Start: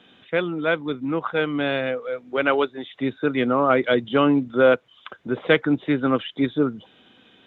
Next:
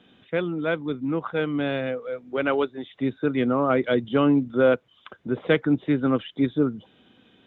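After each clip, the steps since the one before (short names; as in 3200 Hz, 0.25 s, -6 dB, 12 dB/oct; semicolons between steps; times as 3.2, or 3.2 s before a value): low shelf 420 Hz +8 dB; gain -6 dB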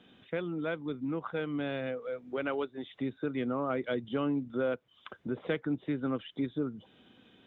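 compressor 2:1, threshold -32 dBFS, peak gain reduction 10 dB; gain -3 dB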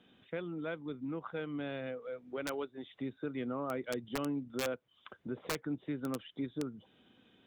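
wrapped overs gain 22 dB; gain -5 dB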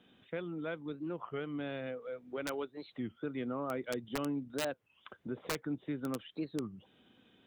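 record warp 33 1/3 rpm, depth 250 cents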